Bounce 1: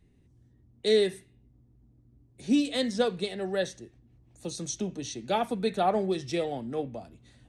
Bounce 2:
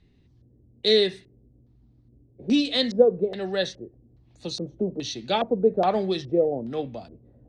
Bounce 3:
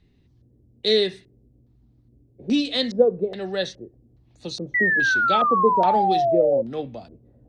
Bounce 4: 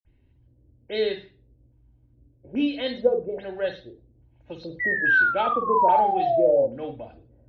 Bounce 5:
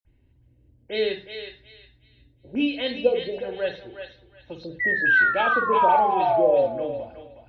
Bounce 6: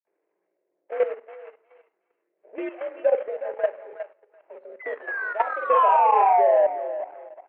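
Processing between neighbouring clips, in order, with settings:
LFO low-pass square 1.2 Hz 510–4300 Hz; gain +2.5 dB
painted sound fall, 4.74–6.62, 530–2000 Hz -20 dBFS
reverb, pre-delay 49 ms
dynamic EQ 2600 Hz, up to +6 dB, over -44 dBFS, Q 2.6; on a send: thinning echo 0.364 s, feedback 27%, high-pass 960 Hz, level -6 dB
median filter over 25 samples; mistuned SSB +61 Hz 400–2200 Hz; level quantiser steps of 12 dB; gain +7 dB

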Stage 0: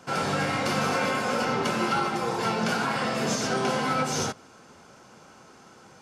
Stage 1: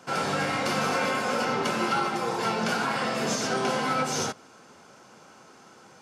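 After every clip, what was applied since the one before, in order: HPF 160 Hz 6 dB/oct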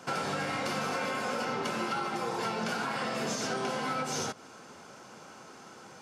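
compressor 4:1, threshold -33 dBFS, peak gain reduction 9.5 dB; gain +2 dB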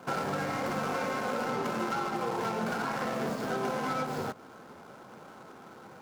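median filter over 15 samples; gain +2 dB

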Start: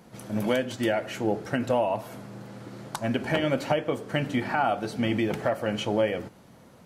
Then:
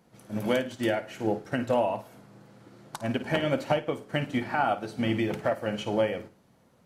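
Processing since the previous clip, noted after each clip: on a send: flutter echo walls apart 9.2 m, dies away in 0.31 s; on the sum: upward expander 1.5:1, over -41 dBFS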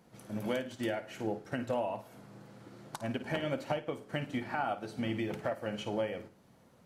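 compressor 1.5:1, threshold -44 dBFS, peak gain reduction 8.5 dB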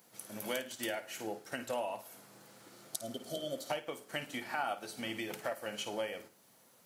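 spectral repair 2.79–3.67, 770–3000 Hz before; RIAA curve recording; gain -1.5 dB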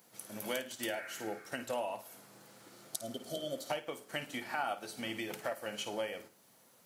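spectral repair 0.98–1.45, 990–2600 Hz both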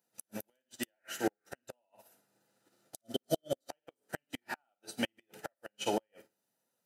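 notch comb 1100 Hz; flipped gate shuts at -29 dBFS, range -25 dB; upward expander 2.5:1, over -59 dBFS; gain +13.5 dB

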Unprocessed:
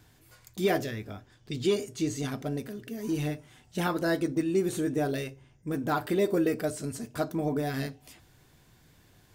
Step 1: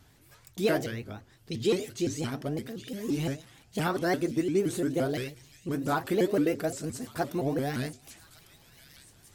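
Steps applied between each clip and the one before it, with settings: thin delay 1.154 s, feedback 57%, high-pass 3000 Hz, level -10.5 dB; shaped vibrato saw up 5.8 Hz, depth 250 cents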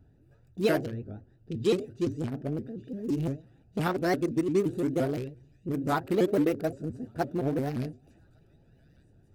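Wiener smoothing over 41 samples; gain +1.5 dB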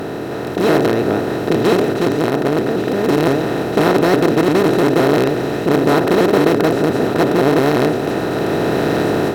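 per-bin compression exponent 0.2; AGC gain up to 9.5 dB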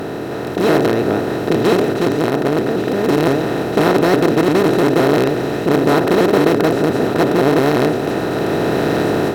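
nothing audible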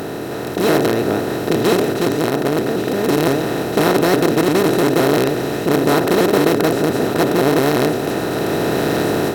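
high shelf 5500 Hz +10 dB; gain -1.5 dB

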